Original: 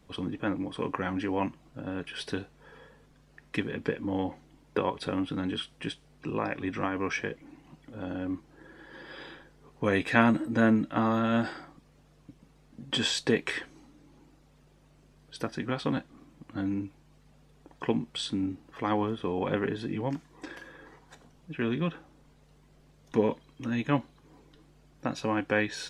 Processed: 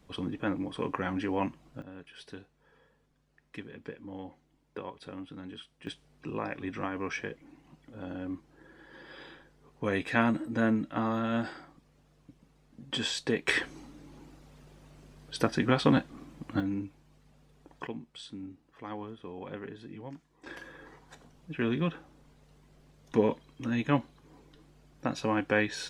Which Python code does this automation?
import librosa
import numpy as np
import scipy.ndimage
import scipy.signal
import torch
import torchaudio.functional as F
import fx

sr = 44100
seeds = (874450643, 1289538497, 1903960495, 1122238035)

y = fx.gain(x, sr, db=fx.steps((0.0, -1.0), (1.82, -12.0), (5.87, -4.0), (13.48, 6.0), (16.6, -2.0), (17.87, -12.0), (20.46, 0.0)))